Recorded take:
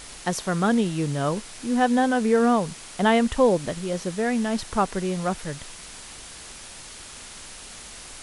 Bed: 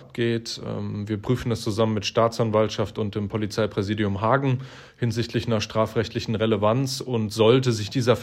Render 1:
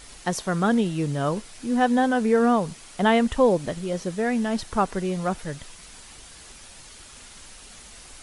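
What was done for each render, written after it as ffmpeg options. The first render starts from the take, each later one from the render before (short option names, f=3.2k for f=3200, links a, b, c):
-af "afftdn=nr=6:nf=-42"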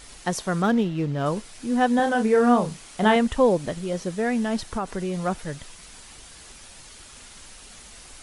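-filter_complex "[0:a]asettb=1/sr,asplit=3[a][b][c];[a]atrim=end=0.624[d];[b]atrim=start=0.62:end=1.26,asetpts=PTS-STARTPTS,afade=t=in:d=0.004:c=qsin,afade=t=out:st=0.636:d=0.004:c=qsin,adynamicsmooth=sensitivity=6:basefreq=2.7k[e];[c]atrim=start=1.256[f];[d][e]acrossfade=d=0.004:c1=hsin:c2=qsin[g];[g][f]acrossfade=d=0.004:c1=qsin:c2=hsin,asettb=1/sr,asplit=3[h][i][j];[h]atrim=end=1.964[k];[i]atrim=start=1.96:end=3.16,asetpts=PTS-STARTPTS,afade=t=in:d=0.004:c=qsin,afade=t=out:st=1.196:d=0.004:c=qsin,asplit=2[l][m];[m]adelay=33,volume=-6.5dB[n];[l][n]amix=inputs=2:normalize=0,atrim=end_sample=52920[o];[j]atrim=start=3.156[p];[k][o]acrossfade=d=0.004:c1=hsin:c2=qsin[q];[q][p]acrossfade=d=0.004:c1=qsin:c2=hsin,asettb=1/sr,asplit=3[r][s][t];[r]atrim=end=4.704[u];[s]atrim=start=4.7:end=5.14,asetpts=PTS-STARTPTS,afade=t=in:d=0.004:c=qsin,afade=t=out:st=0.436:d=0.004:c=qsin,acompressor=threshold=-23dB:ratio=6:attack=3.2:release=140:knee=1:detection=peak[v];[t]atrim=start=5.136[w];[u][v]acrossfade=d=0.004:c1=hsin:c2=qsin[x];[x][w]acrossfade=d=0.004:c1=qsin:c2=hsin"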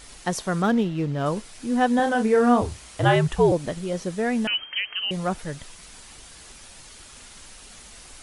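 -filter_complex "[0:a]asettb=1/sr,asplit=3[a][b][c];[a]atrim=end=2.614[d];[b]atrim=start=2.61:end=3.52,asetpts=PTS-STARTPTS,afade=t=in:d=0.004:c=qsin,afade=t=out:st=0.906:d=0.004:c=qsin,afreqshift=-79[e];[c]atrim=start=3.516[f];[d][e]acrossfade=d=0.004:c1=hsin:c2=qsin[g];[g][f]acrossfade=d=0.004:c1=qsin:c2=hsin,asettb=1/sr,asplit=3[h][i][j];[h]atrim=end=4.474[k];[i]atrim=start=4.47:end=5.11,asetpts=PTS-STARTPTS,afade=t=in:d=0.004:c=qsin,afade=t=out:st=0.636:d=0.004:c=qsin,lowpass=f=2.7k:t=q:w=0.5098,lowpass=f=2.7k:t=q:w=0.6013,lowpass=f=2.7k:t=q:w=0.9,lowpass=f=2.7k:t=q:w=2.563,afreqshift=-3200[l];[j]atrim=start=5.106[m];[k][l]acrossfade=d=0.004:c1=hsin:c2=qsin[n];[n][m]acrossfade=d=0.004:c1=qsin:c2=hsin"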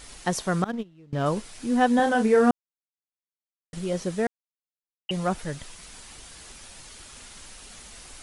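-filter_complex "[0:a]asettb=1/sr,asplit=3[a][b][c];[a]atrim=end=0.644[d];[b]atrim=start=0.64:end=1.13,asetpts=PTS-STARTPTS,afade=t=in:d=0.004:c=qsin,afade=t=out:st=0.486:d=0.004:c=qsin,agate=range=-25dB:threshold=-19dB:ratio=16:release=100:detection=peak[e];[c]atrim=start=1.126[f];[d][e]acrossfade=d=0.004:c1=hsin:c2=qsin[g];[g][f]acrossfade=d=0.004:c1=qsin:c2=hsin,asplit=5[h][i][j][k][l];[h]atrim=end=2.51,asetpts=PTS-STARTPTS,afade=t=out:st=2.506:d=0.004:c=hsin[m];[i]atrim=start=2.51:end=3.73,asetpts=PTS-STARTPTS,volume=0[n];[j]atrim=start=3.73:end=4.27,asetpts=PTS-STARTPTS,afade=t=in:d=0.004:c=hsin,afade=t=out:st=0.536:d=0.004:c=hsin[o];[k]atrim=start=4.27:end=5.09,asetpts=PTS-STARTPTS,volume=0[p];[l]atrim=start=5.09,asetpts=PTS-STARTPTS,afade=t=in:d=0.004:c=hsin[q];[m][n][o][p][q]concat=n=5:v=0:a=1"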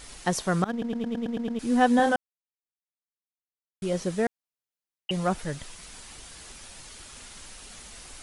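-filter_complex "[0:a]asplit=11[a][b][c][d][e][f][g][h][i][j][k];[a]atrim=end=0.822[l];[b]atrim=start=0.708:end=0.822[m];[c]atrim=start=0.708:end=0.822[n];[d]atrim=start=0.708:end=0.822[o];[e]atrim=start=0.708:end=0.822[p];[f]atrim=start=0.708:end=0.822[q];[g]atrim=start=0.708:end=0.822[r];[h]atrim=start=0.708:end=0.822[s];[i]atrim=start=1.588:end=2.16,asetpts=PTS-STARTPTS,afade=t=out:st=0.568:d=0.004:c=hsin[t];[j]atrim=start=2.16:end=3.82,asetpts=PTS-STARTPTS,volume=0[u];[k]atrim=start=3.82,asetpts=PTS-STARTPTS,afade=t=in:d=0.004:c=hsin[v];[l][m]acrossfade=d=0.004:c1=hsin:c2=hsin[w];[w][n]acrossfade=d=0.004:c1=hsin:c2=hsin[x];[x][o]acrossfade=d=0.004:c1=hsin:c2=hsin[y];[y][p]acrossfade=d=0.004:c1=hsin:c2=hsin[z];[z][q]acrossfade=d=0.004:c1=hsin:c2=hsin[aa];[aa][r]acrossfade=d=0.004:c1=hsin:c2=hsin[ab];[ab][s]acrossfade=d=0.004:c1=hsin:c2=hsin[ac];[t][u][v]concat=n=3:v=0:a=1[ad];[ac][ad]acrossfade=d=0.004:c1=hsin:c2=hsin"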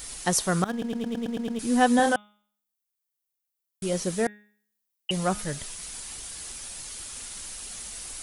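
-af "aemphasis=mode=production:type=50kf,bandreject=f=208:t=h:w=4,bandreject=f=416:t=h:w=4,bandreject=f=624:t=h:w=4,bandreject=f=832:t=h:w=4,bandreject=f=1.04k:t=h:w=4,bandreject=f=1.248k:t=h:w=4,bandreject=f=1.456k:t=h:w=4,bandreject=f=1.664k:t=h:w=4,bandreject=f=1.872k:t=h:w=4,bandreject=f=2.08k:t=h:w=4,bandreject=f=2.288k:t=h:w=4,bandreject=f=2.496k:t=h:w=4,bandreject=f=2.704k:t=h:w=4,bandreject=f=2.912k:t=h:w=4,bandreject=f=3.12k:t=h:w=4,bandreject=f=3.328k:t=h:w=4,bandreject=f=3.536k:t=h:w=4,bandreject=f=3.744k:t=h:w=4"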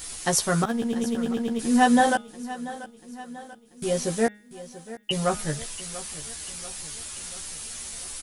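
-filter_complex "[0:a]asplit=2[a][b];[b]adelay=13,volume=-3dB[c];[a][c]amix=inputs=2:normalize=0,aecho=1:1:688|1376|2064|2752|3440:0.158|0.084|0.0445|0.0236|0.0125"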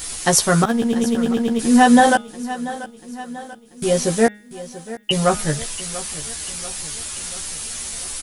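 -af "volume=7.5dB,alimiter=limit=-1dB:level=0:latency=1"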